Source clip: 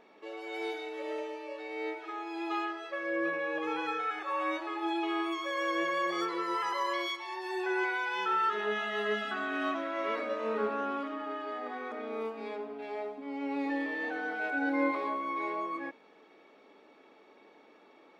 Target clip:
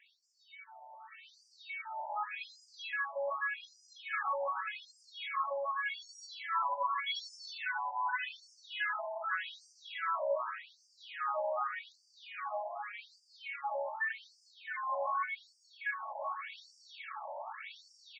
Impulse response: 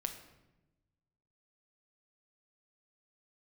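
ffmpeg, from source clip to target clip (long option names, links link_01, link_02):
-filter_complex "[0:a]areverse,acompressor=threshold=-45dB:ratio=10,areverse,asplit=2[link_01][link_02];[link_02]adelay=34,volume=-6.5dB[link_03];[link_01][link_03]amix=inputs=2:normalize=0,asplit=2[link_04][link_05];[link_05]aecho=0:1:674|1348|2022|2696:0.316|0.104|0.0344|0.0114[link_06];[link_04][link_06]amix=inputs=2:normalize=0,alimiter=level_in=17.5dB:limit=-24dB:level=0:latency=1:release=331,volume=-17.5dB,dynaudnorm=framelen=260:gausssize=13:maxgain=16.5dB,afftfilt=real='re*between(b*sr/1024,730*pow(6600/730,0.5+0.5*sin(2*PI*0.85*pts/sr))/1.41,730*pow(6600/730,0.5+0.5*sin(2*PI*0.85*pts/sr))*1.41)':imag='im*between(b*sr/1024,730*pow(6600/730,0.5+0.5*sin(2*PI*0.85*pts/sr))/1.41,730*pow(6600/730,0.5+0.5*sin(2*PI*0.85*pts/sr))*1.41)':win_size=1024:overlap=0.75,volume=4dB"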